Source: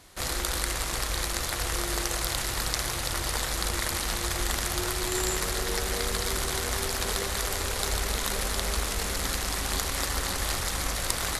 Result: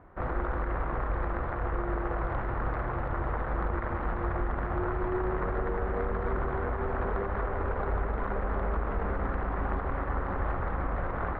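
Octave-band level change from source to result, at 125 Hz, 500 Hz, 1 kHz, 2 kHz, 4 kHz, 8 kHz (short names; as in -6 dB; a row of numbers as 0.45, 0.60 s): +2.0 dB, +2.0 dB, +1.5 dB, -6.0 dB, under -30 dB, under -40 dB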